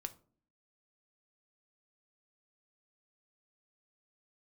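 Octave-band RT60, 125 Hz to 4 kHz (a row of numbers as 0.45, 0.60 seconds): 0.65, 0.75, 0.55, 0.40, 0.30, 0.25 seconds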